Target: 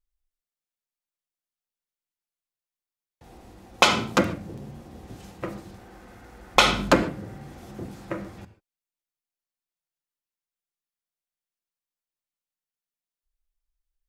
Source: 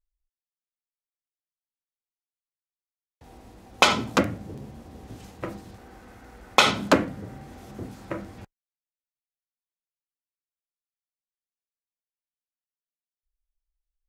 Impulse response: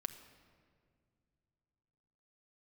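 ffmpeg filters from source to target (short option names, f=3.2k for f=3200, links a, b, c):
-filter_complex "[0:a]asettb=1/sr,asplit=3[a][b][c];[a]atrim=end=6.564[d];[b]atrim=start=6.56:end=7.02,asetpts=PTS-STARTPTS,afade=t=in:d=0.004:c=qsin,afade=t=out:st=0.456:d=0.004:c=qsin,aeval=exprs='val(0)+0.0224*(sin(2*PI*50*n/s)+sin(2*PI*2*50*n/s)/2+sin(2*PI*3*50*n/s)/3+sin(2*PI*4*50*n/s)/4+sin(2*PI*5*50*n/s)/5)':c=same[e];[c]atrim=start=7.016[f];[d][e]acrossfade=d=0.004:c1=hsin:c2=qsin[g];[g][f]acrossfade=d=0.004:c1=qsin:c2=hsin[h];[1:a]atrim=start_sample=2205,afade=t=out:st=0.2:d=0.01,atrim=end_sample=9261[i];[h][i]afir=irnorm=-1:irlink=0,volume=2.5dB"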